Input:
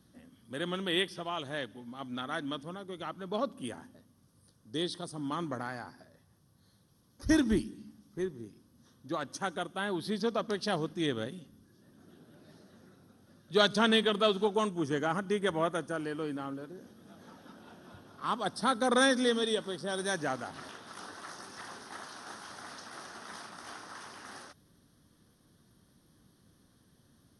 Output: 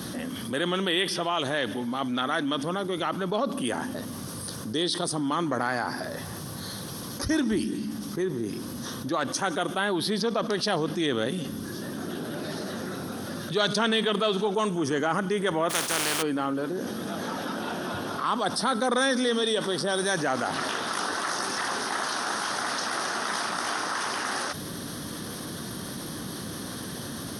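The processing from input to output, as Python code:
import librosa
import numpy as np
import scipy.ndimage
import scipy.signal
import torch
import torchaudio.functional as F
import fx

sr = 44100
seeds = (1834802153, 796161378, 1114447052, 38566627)

y = fx.spec_flatten(x, sr, power=0.31, at=(15.69, 16.21), fade=0.02)
y = fx.highpass(y, sr, hz=240.0, slope=6)
y = fx.env_flatten(y, sr, amount_pct=70)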